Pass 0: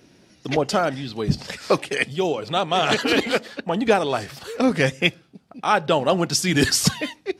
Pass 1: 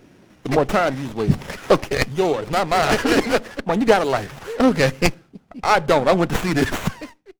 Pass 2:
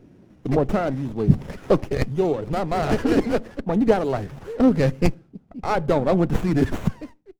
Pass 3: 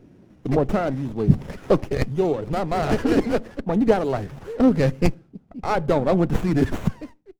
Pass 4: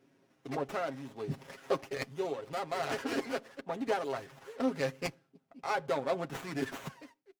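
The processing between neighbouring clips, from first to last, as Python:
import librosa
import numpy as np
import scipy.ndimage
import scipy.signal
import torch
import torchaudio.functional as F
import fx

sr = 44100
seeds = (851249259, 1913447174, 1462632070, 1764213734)

y1 = fx.fade_out_tail(x, sr, length_s=1.19)
y1 = fx.running_max(y1, sr, window=9)
y1 = y1 * librosa.db_to_amplitude(4.0)
y2 = fx.tilt_shelf(y1, sr, db=7.5, hz=650.0)
y2 = y2 * librosa.db_to_amplitude(-5.0)
y3 = y2
y4 = fx.highpass(y3, sr, hz=1100.0, slope=6)
y4 = y4 + 0.61 * np.pad(y4, (int(7.4 * sr / 1000.0), 0))[:len(y4)]
y4 = y4 * librosa.db_to_amplitude(-6.5)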